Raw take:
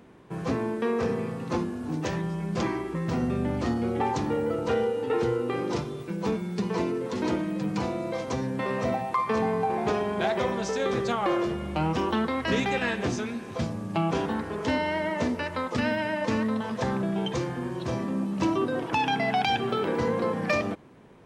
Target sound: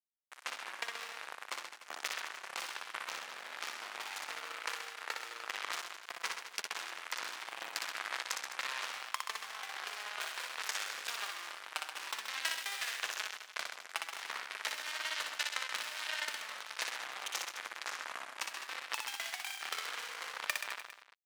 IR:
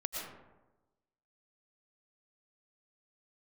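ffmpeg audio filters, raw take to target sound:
-filter_complex "[0:a]asoftclip=type=hard:threshold=-21dB,acompressor=threshold=-29dB:ratio=8,acrusher=bits=3:mix=0:aa=0.5,alimiter=level_in=1.5dB:limit=-24dB:level=0:latency=1:release=334,volume=-1.5dB,highpass=1.4k,asplit=2[a][b];[b]aecho=0:1:60|129|208.4|299.6|404.5:0.631|0.398|0.251|0.158|0.1[c];[a][c]amix=inputs=2:normalize=0,volume=11.5dB"

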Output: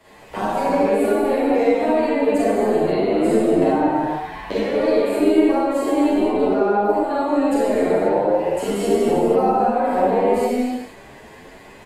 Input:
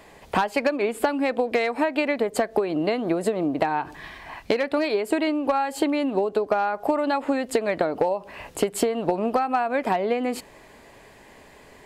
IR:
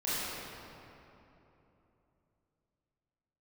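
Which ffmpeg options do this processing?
-filter_complex "[0:a]asettb=1/sr,asplit=3[a][b][c];[a]atrim=end=6.424[d];[b]atrim=start=6.42:end=6.89,asetpts=PTS-STARTPTS,afade=t=in:d=0.004:c=qsin,afade=t=out:st=0.466:d=0.004:c=qsin,equalizer=f=9.9k:w=1.4:g=-13.5[e];[c]atrim=start=6.886[f];[d][e]acrossfade=d=0.004:c1=hsin:c2=qsin[g];[g][f]acrossfade=d=0.004:c1=qsin:c2=hsin[h];[1:a]atrim=start_sample=2205,afade=t=out:st=0.44:d=0.01,atrim=end_sample=19845,asetrate=31752,aresample=44100[i];[h][i]afir=irnorm=-1:irlink=0,acrossover=split=230|900|6400[j][k][l][m];[j]aeval=exprs='clip(val(0),-1,0.0224)':c=same[n];[l]acompressor=threshold=-30dB:ratio=6[o];[m]alimiter=level_in=5dB:limit=-24dB:level=0:latency=1:release=433,volume=-5dB[p];[n][k][o][p]amix=inputs=4:normalize=0,asplit=2[q][r];[r]adelay=8.9,afreqshift=1.4[s];[q][s]amix=inputs=2:normalize=1"

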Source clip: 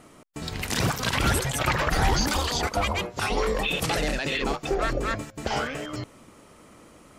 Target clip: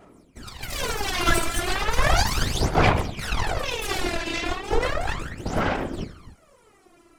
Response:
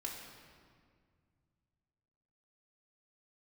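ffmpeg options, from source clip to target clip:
-filter_complex "[1:a]atrim=start_sample=2205,afade=t=out:st=0.37:d=0.01,atrim=end_sample=16758[a];[0:a][a]afir=irnorm=-1:irlink=0,aeval=exprs='0.299*(cos(1*acos(clip(val(0)/0.299,-1,1)))-cos(1*PI/2))+0.0531*(cos(3*acos(clip(val(0)/0.299,-1,1)))-cos(3*PI/2))+0.106*(cos(4*acos(clip(val(0)/0.299,-1,1)))-cos(4*PI/2))':c=same,afftfilt=real='hypot(re,im)*cos(2*PI*random(0))':imag='hypot(re,im)*sin(2*PI*random(1))':win_size=512:overlap=0.75,aphaser=in_gain=1:out_gain=1:delay=3:decay=0.74:speed=0.35:type=sinusoidal,volume=5dB"

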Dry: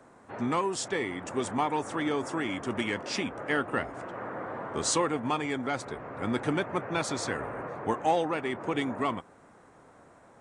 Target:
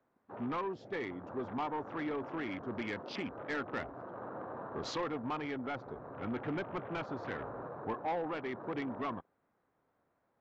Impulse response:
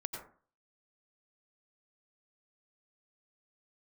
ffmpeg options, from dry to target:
-af "afwtdn=0.0126,lowpass=f=4.4k:w=0.5412,lowpass=f=4.4k:w=1.3066,aresample=16000,asoftclip=type=tanh:threshold=-24dB,aresample=44100,volume=-5.5dB"

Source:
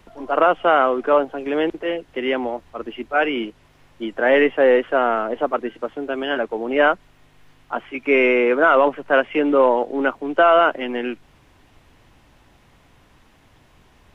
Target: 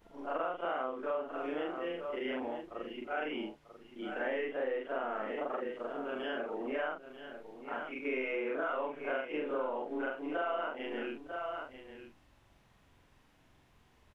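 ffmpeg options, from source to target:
-af "afftfilt=real='re':imag='-im':win_size=4096:overlap=0.75,aecho=1:1:943:0.237,acompressor=threshold=-25dB:ratio=4,volume=-8dB"

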